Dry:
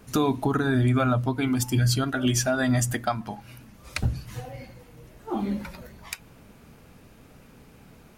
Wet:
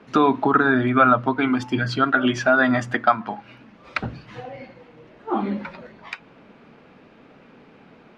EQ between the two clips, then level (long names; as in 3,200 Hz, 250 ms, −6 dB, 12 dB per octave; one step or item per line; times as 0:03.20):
three-way crossover with the lows and the highs turned down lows −20 dB, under 180 Hz, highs −23 dB, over 4,200 Hz
dynamic equaliser 1,300 Hz, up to +8 dB, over −44 dBFS, Q 1.4
high-frequency loss of the air 69 metres
+5.5 dB